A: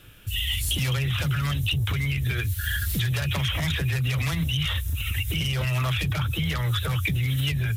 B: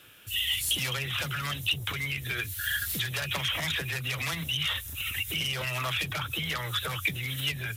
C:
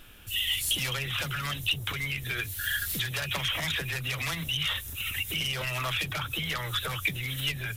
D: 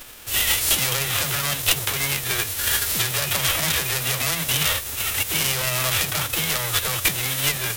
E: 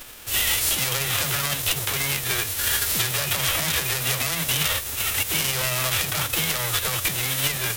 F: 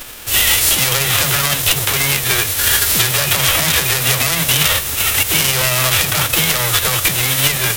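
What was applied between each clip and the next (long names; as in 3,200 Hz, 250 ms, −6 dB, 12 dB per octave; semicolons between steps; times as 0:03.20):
high-pass filter 510 Hz 6 dB per octave
background noise brown −52 dBFS
spectral envelope flattened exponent 0.3; level +8.5 dB
brickwall limiter −11 dBFS, peak gain reduction 7 dB
convolution reverb RT60 3.2 s, pre-delay 100 ms, DRR 16.5 dB; level +9 dB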